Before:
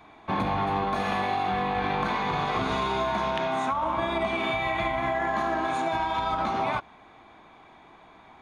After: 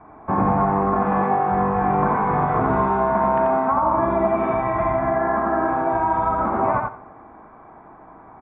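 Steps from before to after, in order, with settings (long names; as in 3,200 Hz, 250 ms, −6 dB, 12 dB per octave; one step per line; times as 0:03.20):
inverse Chebyshev low-pass filter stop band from 7,800 Hz, stop band 80 dB
repeating echo 87 ms, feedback 19%, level −3 dB
on a send at −21 dB: convolution reverb RT60 1.1 s, pre-delay 25 ms
on the sum: level +6.5 dB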